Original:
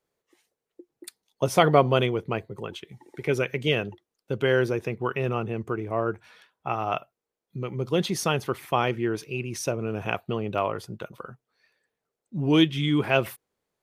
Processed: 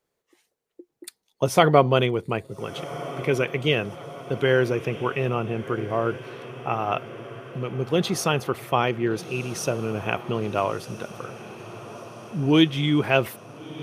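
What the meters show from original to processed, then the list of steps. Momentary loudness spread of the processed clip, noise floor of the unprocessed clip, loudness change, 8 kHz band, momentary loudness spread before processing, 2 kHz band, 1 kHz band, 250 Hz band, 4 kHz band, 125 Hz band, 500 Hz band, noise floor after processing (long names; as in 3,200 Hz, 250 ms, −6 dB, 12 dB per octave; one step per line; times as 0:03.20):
19 LU, below −85 dBFS, +2.0 dB, +2.0 dB, 17 LU, +2.0 dB, +2.0 dB, +2.0 dB, +2.0 dB, +2.0 dB, +2.0 dB, −79 dBFS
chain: feedback delay with all-pass diffusion 1,380 ms, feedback 63%, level −15 dB
level +2 dB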